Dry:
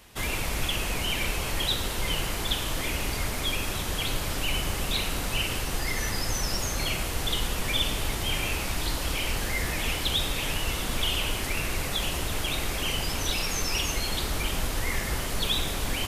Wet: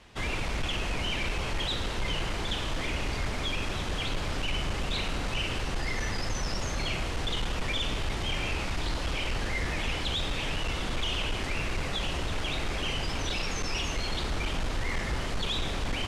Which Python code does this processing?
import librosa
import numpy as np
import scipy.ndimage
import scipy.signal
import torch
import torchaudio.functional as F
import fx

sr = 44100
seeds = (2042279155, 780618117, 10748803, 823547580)

y = np.clip(x, -10.0 ** (-24.5 / 20.0), 10.0 ** (-24.5 / 20.0))
y = fx.air_absorb(y, sr, metres=96.0)